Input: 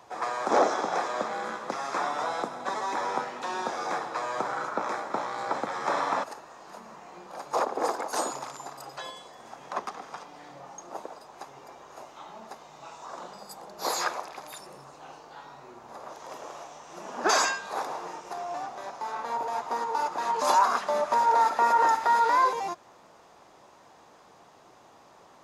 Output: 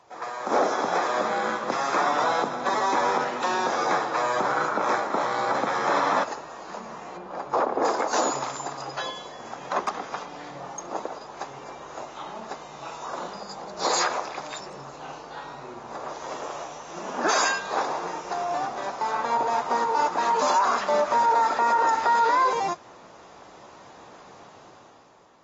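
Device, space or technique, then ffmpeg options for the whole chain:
low-bitrate web radio: -filter_complex "[0:a]asettb=1/sr,asplit=3[link_01][link_02][link_03];[link_01]atrim=end=7.174[link_04];[link_02]atrim=start=7.17:end=7.85,asetpts=PTS-STARTPTS,afade=type=in:duration=0.004:curve=qsin,afade=type=out:start_time=0.676:duration=0.004:curve=qsin,lowpass=frequency=1600:poles=1[link_05];[link_03]atrim=start=7.846[link_06];[link_04][link_05]acrossfade=duration=0.004:curve1=hsin:curve2=qsin[link_07];[link_07][link_06]acrossfade=duration=0.004:curve1=qsin:curve2=hsin,dynaudnorm=framelen=140:gausssize=11:maxgain=10.5dB,alimiter=limit=-10.5dB:level=0:latency=1:release=44,volume=-3.5dB" -ar 32000 -c:a aac -b:a 24k

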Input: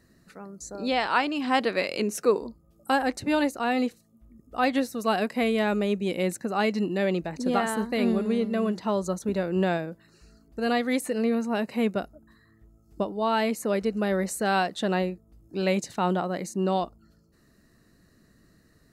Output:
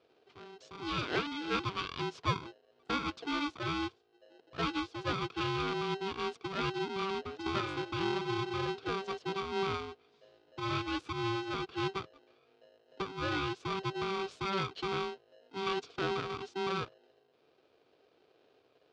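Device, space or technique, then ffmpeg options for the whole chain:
ring modulator pedal into a guitar cabinet: -af "aeval=exprs='val(0)*sgn(sin(2*PI*580*n/s))':channel_layout=same,highpass=99,equalizer=frequency=210:width_type=q:width=4:gain=-7,equalizer=frequency=440:width_type=q:width=4:gain=6,equalizer=frequency=850:width_type=q:width=4:gain=-10,equalizer=frequency=1900:width_type=q:width=4:gain=-10,lowpass=frequency=4400:width=0.5412,lowpass=frequency=4400:width=1.3066,volume=-7dB"

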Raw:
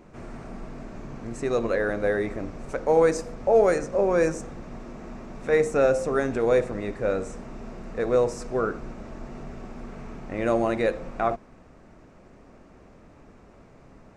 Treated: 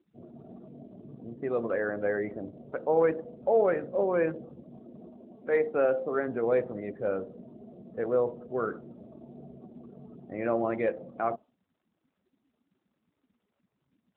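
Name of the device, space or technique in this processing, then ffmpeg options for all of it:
mobile call with aggressive noise cancelling: -filter_complex "[0:a]asplit=3[link_01][link_02][link_03];[link_01]afade=type=out:start_time=5.1:duration=0.02[link_04];[link_02]highpass=200,afade=type=in:start_time=5.1:duration=0.02,afade=type=out:start_time=6.26:duration=0.02[link_05];[link_03]afade=type=in:start_time=6.26:duration=0.02[link_06];[link_04][link_05][link_06]amix=inputs=3:normalize=0,highpass=frequency=120:poles=1,afftdn=noise_reduction=35:noise_floor=-37,volume=-4dB" -ar 8000 -c:a libopencore_amrnb -b:a 12200

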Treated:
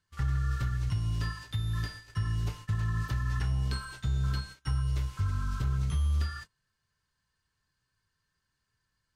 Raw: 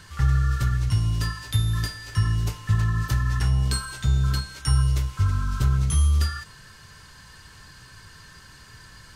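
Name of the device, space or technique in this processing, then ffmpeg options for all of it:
limiter into clipper: -filter_complex "[0:a]acrossover=split=4500[link_01][link_02];[link_02]acompressor=threshold=-46dB:ratio=4:attack=1:release=60[link_03];[link_01][link_03]amix=inputs=2:normalize=0,alimiter=limit=-15.5dB:level=0:latency=1:release=240,asoftclip=type=hard:threshold=-17dB,agate=range=-27dB:threshold=-37dB:ratio=16:detection=peak,volume=-6dB"

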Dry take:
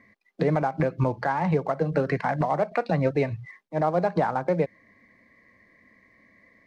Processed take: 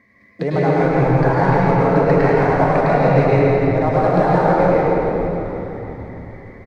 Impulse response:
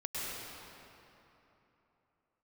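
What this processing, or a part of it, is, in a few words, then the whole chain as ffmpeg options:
cave: -filter_complex "[0:a]asplit=7[link_01][link_02][link_03][link_04][link_05][link_06][link_07];[link_02]adelay=428,afreqshift=-140,volume=-12.5dB[link_08];[link_03]adelay=856,afreqshift=-280,volume=-17.7dB[link_09];[link_04]adelay=1284,afreqshift=-420,volume=-22.9dB[link_10];[link_05]adelay=1712,afreqshift=-560,volume=-28.1dB[link_11];[link_06]adelay=2140,afreqshift=-700,volume=-33.3dB[link_12];[link_07]adelay=2568,afreqshift=-840,volume=-38.5dB[link_13];[link_01][link_08][link_09][link_10][link_11][link_12][link_13]amix=inputs=7:normalize=0,aecho=1:1:167:0.398[link_14];[1:a]atrim=start_sample=2205[link_15];[link_14][link_15]afir=irnorm=-1:irlink=0,volume=5.5dB"

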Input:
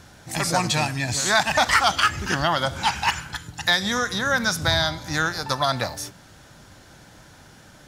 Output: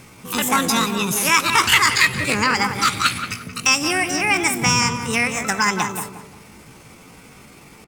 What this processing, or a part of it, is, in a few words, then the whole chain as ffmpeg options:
chipmunk voice: -filter_complex "[0:a]asetrate=66075,aresample=44100,atempo=0.66742,asplit=2[link_01][link_02];[link_02]adelay=177,lowpass=frequency=1500:poles=1,volume=-6dB,asplit=2[link_03][link_04];[link_04]adelay=177,lowpass=frequency=1500:poles=1,volume=0.38,asplit=2[link_05][link_06];[link_06]adelay=177,lowpass=frequency=1500:poles=1,volume=0.38,asplit=2[link_07][link_08];[link_08]adelay=177,lowpass=frequency=1500:poles=1,volume=0.38,asplit=2[link_09][link_10];[link_10]adelay=177,lowpass=frequency=1500:poles=1,volume=0.38[link_11];[link_01][link_03][link_05][link_07][link_09][link_11]amix=inputs=6:normalize=0,volume=3.5dB"

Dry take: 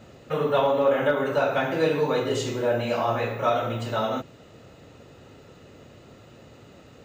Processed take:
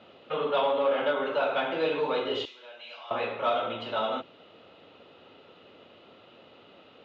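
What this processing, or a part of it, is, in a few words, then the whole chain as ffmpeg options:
overdrive pedal into a guitar cabinet: -filter_complex "[0:a]asplit=2[link_01][link_02];[link_02]highpass=frequency=720:poles=1,volume=12dB,asoftclip=type=tanh:threshold=-9dB[link_03];[link_01][link_03]amix=inputs=2:normalize=0,lowpass=frequency=4100:poles=1,volume=-6dB,highpass=110,equalizer=frequency=130:width_type=q:width=4:gain=-10,equalizer=frequency=1800:width_type=q:width=4:gain=-7,equalizer=frequency=3200:width_type=q:width=4:gain=7,lowpass=frequency=4000:width=0.5412,lowpass=frequency=4000:width=1.3066,asettb=1/sr,asplit=3[link_04][link_05][link_06];[link_04]atrim=end=2.454[link_07];[link_05]atrim=start=2.45:end=3.11,asetpts=PTS-STARTPTS,afade=type=in:duration=0.004:curve=qsin,afade=type=out:start_time=0.656:duration=0.004:curve=qsin,aderivative[link_08];[link_06]atrim=start=3.106[link_09];[link_07][link_08]acrossfade=duration=0.004:curve1=hsin:curve2=qsin[link_10];[link_10][link_09]acrossfade=duration=0.004:curve1=qsin:curve2=hsin,volume=-6.5dB"

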